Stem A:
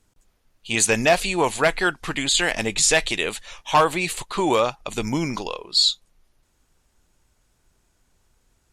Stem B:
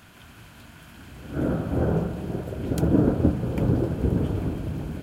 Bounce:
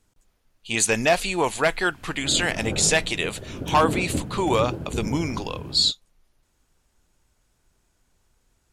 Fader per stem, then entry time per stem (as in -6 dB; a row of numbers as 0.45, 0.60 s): -2.0, -6.5 dB; 0.00, 0.90 s